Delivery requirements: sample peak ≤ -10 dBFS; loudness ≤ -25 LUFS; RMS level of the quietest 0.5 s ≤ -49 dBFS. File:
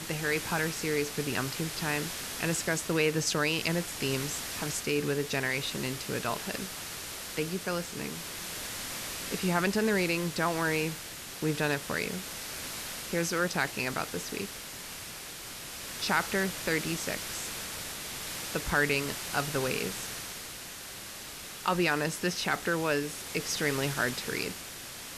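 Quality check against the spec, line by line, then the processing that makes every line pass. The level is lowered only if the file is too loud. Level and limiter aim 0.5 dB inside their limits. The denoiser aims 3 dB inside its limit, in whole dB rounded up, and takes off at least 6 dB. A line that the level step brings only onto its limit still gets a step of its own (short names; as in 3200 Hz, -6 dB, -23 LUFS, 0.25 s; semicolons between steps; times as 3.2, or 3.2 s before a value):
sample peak -13.5 dBFS: OK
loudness -31.5 LUFS: OK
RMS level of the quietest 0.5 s -43 dBFS: fail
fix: denoiser 9 dB, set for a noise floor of -43 dBFS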